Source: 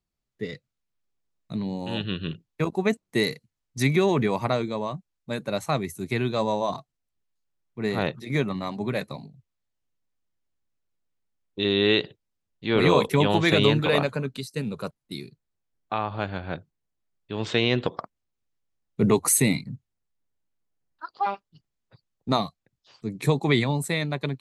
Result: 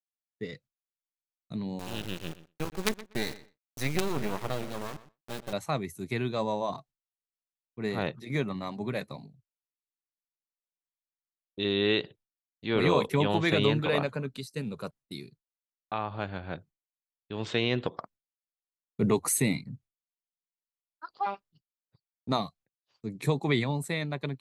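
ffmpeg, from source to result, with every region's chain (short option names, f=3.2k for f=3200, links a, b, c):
-filter_complex "[0:a]asettb=1/sr,asplit=3[a][b][c];[a]atrim=end=1.794[d];[b]atrim=start=1.79:end=5.53,asetpts=PTS-STARTPTS,afade=t=in:d=0.004:c=qsin,afade=t=out:st=3.736:d=0.004:c=qsin,acrusher=bits=3:dc=4:mix=0:aa=0.000001,asplit=2[e][f];[f]adelay=122,lowpass=f=4.4k:p=1,volume=-16dB,asplit=2[g][h];[h]adelay=122,lowpass=f=4.4k:p=1,volume=0.19[i];[e][g][i]amix=inputs=3:normalize=0,atrim=end_sample=164934[j];[c]atrim=start=5.526[k];[d][j]acrossfade=d=0.004:c1=hsin:c2=qsin[l];[l][k]acrossfade=d=0.004:c1=qsin:c2=hsin,agate=range=-33dB:threshold=-46dB:ratio=3:detection=peak,adynamicequalizer=threshold=0.01:dfrequency=3800:dqfactor=0.7:tfrequency=3800:tqfactor=0.7:attack=5:release=100:ratio=0.375:range=2:mode=cutabove:tftype=highshelf,volume=-5dB"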